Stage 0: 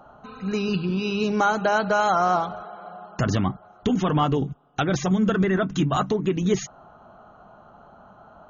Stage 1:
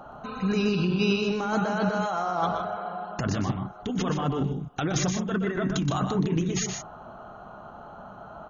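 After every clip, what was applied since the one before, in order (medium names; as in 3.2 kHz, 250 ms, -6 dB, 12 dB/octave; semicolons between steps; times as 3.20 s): compressor with a negative ratio -27 dBFS, ratio -1; loudspeakers at several distances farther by 42 m -7 dB, 53 m -10 dB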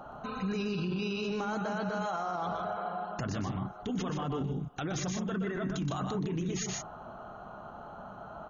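peak limiter -24 dBFS, peak gain reduction 11.5 dB; trim -2 dB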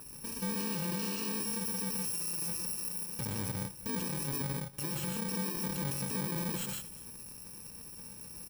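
bit-reversed sample order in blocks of 64 samples; delay 237 ms -20 dB; trim -2 dB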